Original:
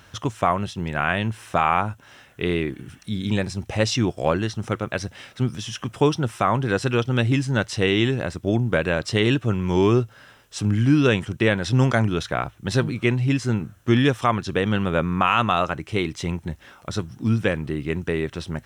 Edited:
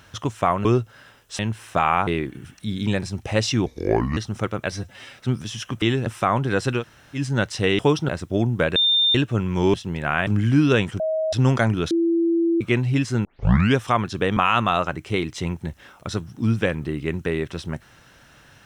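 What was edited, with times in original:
0:00.65–0:01.18: swap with 0:09.87–0:10.61
0:01.86–0:02.51: remove
0:04.10–0:04.45: play speed 69%
0:04.99–0:05.29: time-stretch 1.5×
0:05.95–0:06.25: swap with 0:07.97–0:08.22
0:06.98–0:07.36: fill with room tone, crossfade 0.10 s
0:08.89–0:09.28: beep over 3,610 Hz −15 dBFS
0:11.34–0:11.67: beep over 634 Hz −20 dBFS
0:12.25–0:12.95: beep over 335 Hz −16.5 dBFS
0:13.59: tape start 0.51 s
0:14.71–0:15.19: remove

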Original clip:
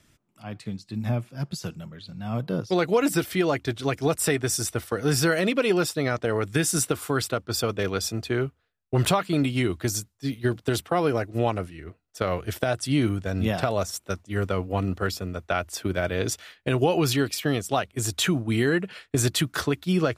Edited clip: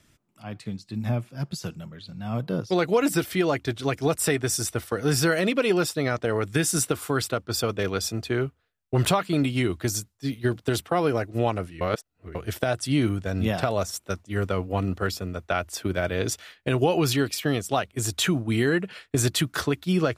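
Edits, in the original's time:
0:11.81–0:12.35: reverse

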